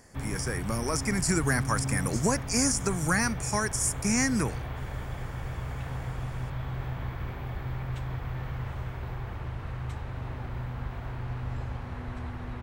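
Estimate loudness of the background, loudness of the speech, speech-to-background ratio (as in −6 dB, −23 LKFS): −36.0 LKFS, −28.0 LKFS, 8.0 dB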